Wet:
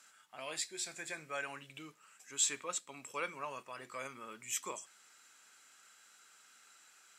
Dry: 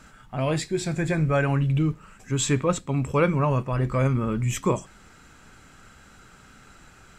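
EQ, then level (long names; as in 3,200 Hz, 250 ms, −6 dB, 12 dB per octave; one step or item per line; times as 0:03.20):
resonant band-pass 250 Hz, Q 0.55
first difference
spectral tilt +4.5 dB per octave
+9.0 dB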